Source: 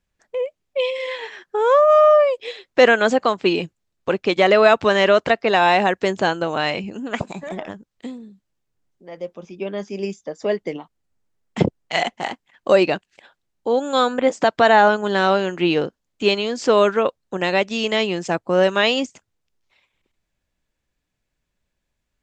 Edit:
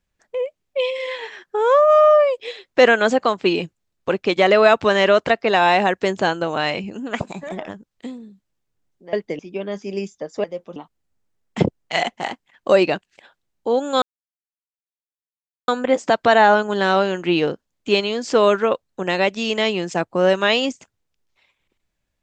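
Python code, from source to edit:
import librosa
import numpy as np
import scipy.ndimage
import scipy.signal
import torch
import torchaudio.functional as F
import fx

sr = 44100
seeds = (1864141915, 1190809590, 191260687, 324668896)

y = fx.edit(x, sr, fx.swap(start_s=9.13, length_s=0.32, other_s=10.5, other_length_s=0.26),
    fx.insert_silence(at_s=14.02, length_s=1.66), tone=tone)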